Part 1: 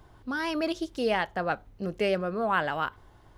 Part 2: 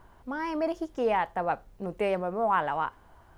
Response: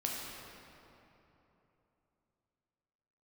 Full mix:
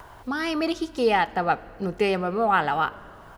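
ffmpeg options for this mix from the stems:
-filter_complex "[0:a]volume=3dB,asplit=2[link_01][link_02];[link_02]volume=-19dB[link_03];[1:a]highpass=frequency=480:width=0.5412,highpass=frequency=480:width=1.3066,acompressor=mode=upward:threshold=-37dB:ratio=2.5,adelay=1.9,volume=1dB[link_04];[2:a]atrim=start_sample=2205[link_05];[link_03][link_05]afir=irnorm=-1:irlink=0[link_06];[link_01][link_04][link_06]amix=inputs=3:normalize=0"

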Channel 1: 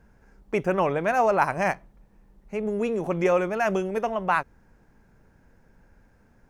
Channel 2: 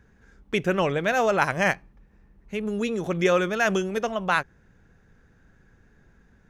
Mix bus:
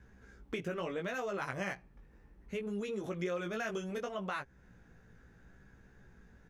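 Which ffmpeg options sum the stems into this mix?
ffmpeg -i stem1.wav -i stem2.wav -filter_complex "[0:a]asoftclip=type=hard:threshold=-15.5dB,volume=-17dB,asplit=2[link_01][link_02];[1:a]flanger=delay=15:depth=3.1:speed=0.69,volume=-1,adelay=1,volume=1dB[link_03];[link_02]apad=whole_len=286676[link_04];[link_03][link_04]sidechaincompress=threshold=-43dB:ratio=8:attack=44:release=156[link_05];[link_01][link_05]amix=inputs=2:normalize=0,acompressor=threshold=-41dB:ratio=2" out.wav

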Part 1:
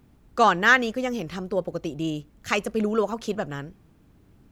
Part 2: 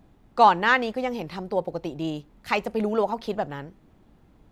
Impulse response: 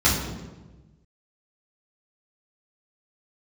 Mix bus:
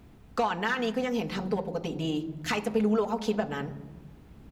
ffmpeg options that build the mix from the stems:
-filter_complex "[0:a]equalizer=frequency=2600:width_type=o:width=1.4:gain=5,alimiter=limit=-16.5dB:level=0:latency=1:release=37,volume=0.5dB[link_01];[1:a]acompressor=threshold=-27dB:ratio=6,asoftclip=type=hard:threshold=-22.5dB,adelay=4.6,volume=-1.5dB,asplit=3[link_02][link_03][link_04];[link_03]volume=-24dB[link_05];[link_04]apad=whole_len=199110[link_06];[link_01][link_06]sidechaincompress=threshold=-34dB:ratio=8:attack=16:release=737[link_07];[2:a]atrim=start_sample=2205[link_08];[link_05][link_08]afir=irnorm=-1:irlink=0[link_09];[link_07][link_02][link_09]amix=inputs=3:normalize=0"

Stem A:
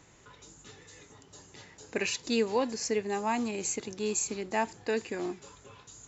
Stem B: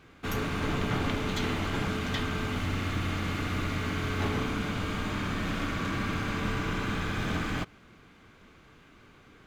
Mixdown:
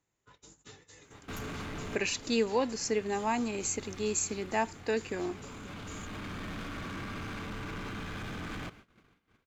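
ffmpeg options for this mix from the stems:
ffmpeg -i stem1.wav -i stem2.wav -filter_complex "[0:a]volume=-0.5dB,asplit=2[link_01][link_02];[1:a]alimiter=level_in=4.5dB:limit=-24dB:level=0:latency=1:release=31,volume=-4.5dB,asoftclip=type=tanh:threshold=-35.5dB,adelay=1050,volume=0.5dB[link_03];[link_02]apad=whole_len=463665[link_04];[link_03][link_04]sidechaincompress=threshold=-38dB:ratio=4:attack=26:release=1400[link_05];[link_01][link_05]amix=inputs=2:normalize=0,agate=range=-24dB:threshold=-52dB:ratio=16:detection=peak" out.wav

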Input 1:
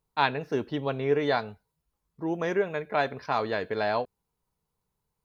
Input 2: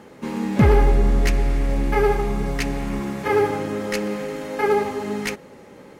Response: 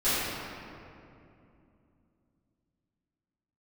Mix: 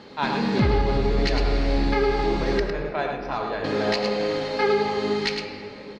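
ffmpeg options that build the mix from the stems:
-filter_complex "[0:a]acontrast=54,volume=-9.5dB,asplit=3[link_01][link_02][link_03];[link_02]volume=-15dB[link_04];[link_03]volume=-4.5dB[link_05];[1:a]lowpass=frequency=4300:width_type=q:width=5.5,volume=-1.5dB,asplit=3[link_06][link_07][link_08];[link_06]atrim=end=2.6,asetpts=PTS-STARTPTS,afade=type=out:start_time=2.596:duration=0.004:curve=hsin[link_09];[link_07]atrim=start=2.6:end=3.64,asetpts=PTS-STARTPTS,volume=0[link_10];[link_08]atrim=start=3.64,asetpts=PTS-STARTPTS,afade=type=in:duration=0.004:curve=hsin[link_11];[link_09][link_10][link_11]concat=n=3:v=0:a=1,asplit=3[link_12][link_13][link_14];[link_13]volume=-20dB[link_15];[link_14]volume=-6.5dB[link_16];[2:a]atrim=start_sample=2205[link_17];[link_04][link_15]amix=inputs=2:normalize=0[link_18];[link_18][link_17]afir=irnorm=-1:irlink=0[link_19];[link_05][link_16]amix=inputs=2:normalize=0,aecho=0:1:105:1[link_20];[link_01][link_12][link_19][link_20]amix=inputs=4:normalize=0,alimiter=limit=-12dB:level=0:latency=1:release=229"

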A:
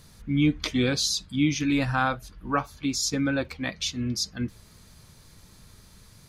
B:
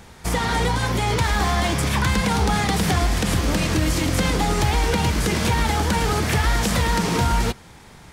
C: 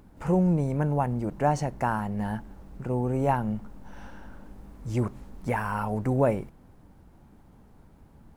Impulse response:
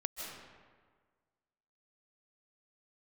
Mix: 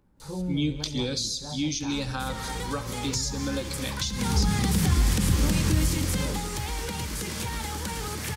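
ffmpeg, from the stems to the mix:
-filter_complex "[0:a]equalizer=frequency=125:width_type=o:width=1:gain=-6,equalizer=frequency=250:width_type=o:width=1:gain=-6,equalizer=frequency=500:width_type=o:width=1:gain=3,equalizer=frequency=1000:width_type=o:width=1:gain=-5,equalizer=frequency=2000:width_type=o:width=1:gain=-9,equalizer=frequency=4000:width_type=o:width=1:gain=7,equalizer=frequency=8000:width_type=o:width=1:gain=9,adelay=200,volume=0.5dB,asplit=3[link_01][link_02][link_03];[link_02]volume=-14dB[link_04];[link_03]volume=-15dB[link_05];[1:a]highshelf=frequency=4700:gain=11,adelay=1950,volume=-0.5dB,afade=type=in:start_time=4.11:duration=0.32:silence=0.237137,afade=type=out:start_time=5.72:duration=0.76:silence=0.251189[link_06];[2:a]flanger=delay=17.5:depth=5.7:speed=0.75,volume=-8dB[link_07];[3:a]atrim=start_sample=2205[link_08];[link_04][link_08]afir=irnorm=-1:irlink=0[link_09];[link_05]aecho=0:1:68|136|204|272|340|408|476|544|612:1|0.59|0.348|0.205|0.121|0.0715|0.0422|0.0249|0.0147[link_10];[link_01][link_06][link_07][link_09][link_10]amix=inputs=5:normalize=0,acrossover=split=260[link_11][link_12];[link_12]acompressor=threshold=-29dB:ratio=6[link_13];[link_11][link_13]amix=inputs=2:normalize=0,asuperstop=centerf=680:order=4:qfactor=7.1"

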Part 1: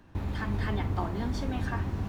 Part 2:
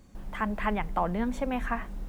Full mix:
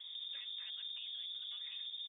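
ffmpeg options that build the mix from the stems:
ffmpeg -i stem1.wav -i stem2.wav -filter_complex "[0:a]lowshelf=frequency=610:width_type=q:width=3:gain=10,acompressor=threshold=-25dB:ratio=6,volume=-4.5dB[link_01];[1:a]acompressor=threshold=-33dB:ratio=16,asoftclip=type=hard:threshold=-29dB,adelay=0.6,volume=-12dB,asplit=2[link_02][link_03];[link_03]apad=whole_len=91776[link_04];[link_01][link_04]sidechaincompress=threshold=-54dB:ratio=8:attack=16:release=110[link_05];[link_05][link_02]amix=inputs=2:normalize=0,lowpass=frequency=3100:width_type=q:width=0.5098,lowpass=frequency=3100:width_type=q:width=0.6013,lowpass=frequency=3100:width_type=q:width=0.9,lowpass=frequency=3100:width_type=q:width=2.563,afreqshift=-3700,alimiter=level_in=13.5dB:limit=-24dB:level=0:latency=1:release=111,volume=-13.5dB" out.wav

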